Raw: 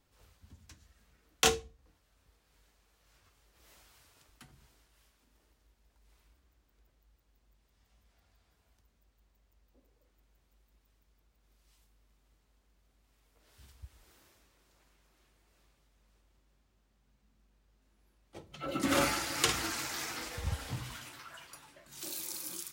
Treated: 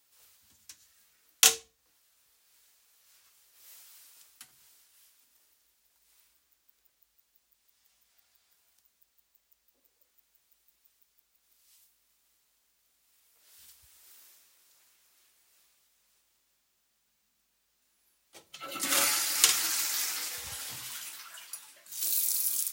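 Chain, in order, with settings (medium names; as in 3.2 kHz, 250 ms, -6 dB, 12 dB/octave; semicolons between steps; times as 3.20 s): tilt EQ +4.5 dB/octave; trim -3 dB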